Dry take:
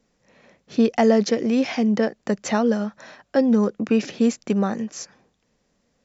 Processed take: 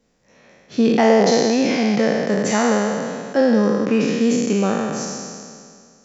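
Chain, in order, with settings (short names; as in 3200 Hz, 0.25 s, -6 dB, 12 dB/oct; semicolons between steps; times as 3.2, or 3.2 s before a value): spectral trails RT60 2.15 s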